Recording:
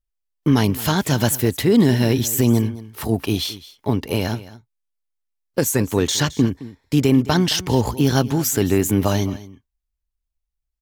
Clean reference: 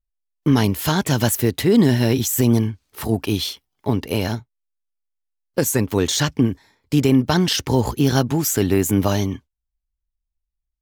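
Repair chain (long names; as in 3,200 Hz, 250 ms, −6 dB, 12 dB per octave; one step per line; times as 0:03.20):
echo removal 217 ms −17.5 dB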